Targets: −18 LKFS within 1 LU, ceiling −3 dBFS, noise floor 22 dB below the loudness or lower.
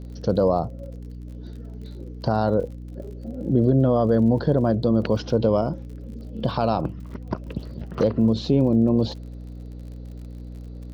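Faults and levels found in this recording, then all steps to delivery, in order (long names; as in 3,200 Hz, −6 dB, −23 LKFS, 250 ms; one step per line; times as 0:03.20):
crackle rate 45 per second; mains hum 60 Hz; hum harmonics up to 300 Hz; level of the hum −34 dBFS; integrated loudness −22.0 LKFS; sample peak −8.5 dBFS; target loudness −18.0 LKFS
→ click removal
hum removal 60 Hz, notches 5
level +4 dB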